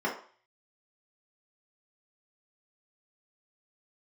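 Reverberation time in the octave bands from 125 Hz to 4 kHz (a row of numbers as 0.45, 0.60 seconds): 0.35, 0.35, 0.40, 0.45, 0.45, 0.45 seconds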